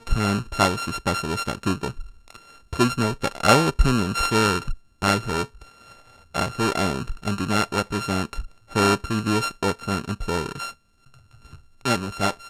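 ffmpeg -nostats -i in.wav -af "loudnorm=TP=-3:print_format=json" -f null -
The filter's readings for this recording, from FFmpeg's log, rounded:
"input_i" : "-24.0",
"input_tp" : "-2.2",
"input_lra" : "5.7",
"input_thresh" : "-34.9",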